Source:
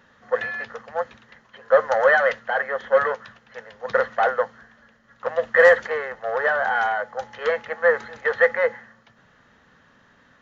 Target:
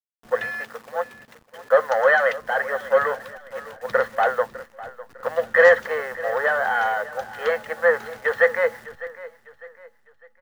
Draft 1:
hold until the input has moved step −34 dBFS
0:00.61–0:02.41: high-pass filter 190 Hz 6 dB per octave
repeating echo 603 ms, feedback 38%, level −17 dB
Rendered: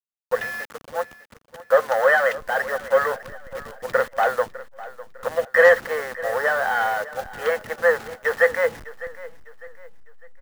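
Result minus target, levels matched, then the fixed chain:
hold until the input has moved: distortion +10 dB
hold until the input has moved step −43 dBFS
0:00.61–0:02.41: high-pass filter 190 Hz 6 dB per octave
repeating echo 603 ms, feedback 38%, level −17 dB

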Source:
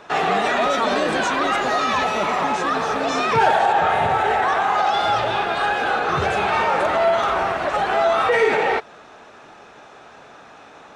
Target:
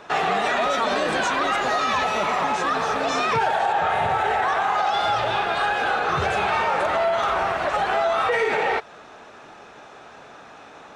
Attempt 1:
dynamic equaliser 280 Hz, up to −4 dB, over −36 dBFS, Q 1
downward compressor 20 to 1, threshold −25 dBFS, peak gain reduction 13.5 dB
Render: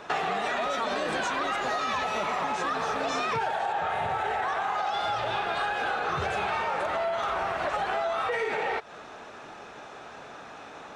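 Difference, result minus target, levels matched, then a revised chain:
downward compressor: peak gain reduction +7.5 dB
dynamic equaliser 280 Hz, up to −4 dB, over −36 dBFS, Q 1
downward compressor 20 to 1, threshold −17 dBFS, peak gain reduction 6 dB

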